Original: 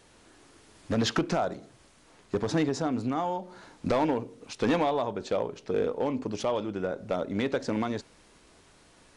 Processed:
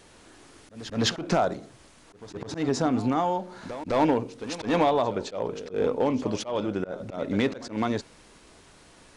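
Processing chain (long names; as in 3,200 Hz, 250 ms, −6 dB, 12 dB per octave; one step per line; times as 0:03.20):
echo ahead of the sound 209 ms −15.5 dB
volume swells 163 ms
level +4.5 dB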